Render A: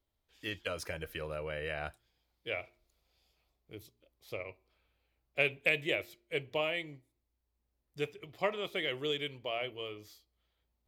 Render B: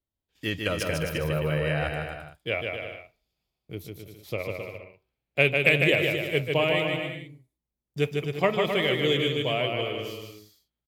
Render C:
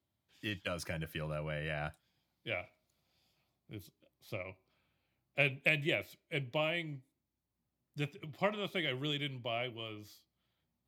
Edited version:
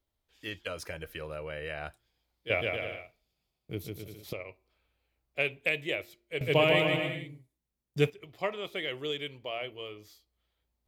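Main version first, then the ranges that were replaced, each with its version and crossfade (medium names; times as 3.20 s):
A
2.50–4.33 s: from B
6.41–8.10 s: from B
not used: C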